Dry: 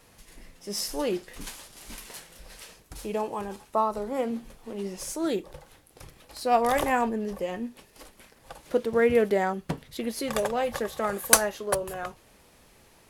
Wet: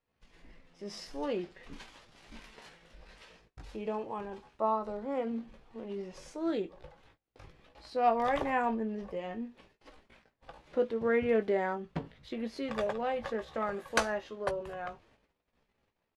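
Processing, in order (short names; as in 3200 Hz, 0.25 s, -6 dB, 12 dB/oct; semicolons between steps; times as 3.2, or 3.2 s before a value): LPF 3500 Hz 12 dB/oct; gate -55 dBFS, range -22 dB; tempo 0.81×; doubler 18 ms -10 dB; gain -6 dB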